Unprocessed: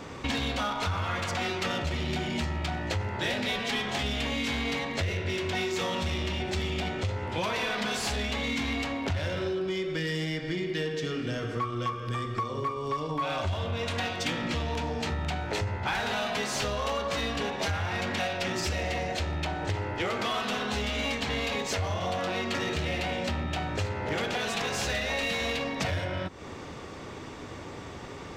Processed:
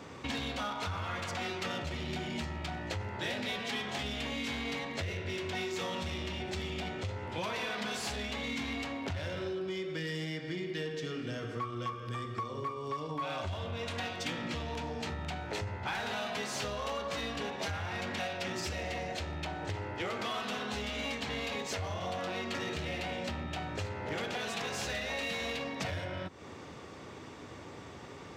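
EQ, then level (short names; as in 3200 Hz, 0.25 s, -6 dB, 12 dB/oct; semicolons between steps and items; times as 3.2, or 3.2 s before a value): HPF 73 Hz; -6.0 dB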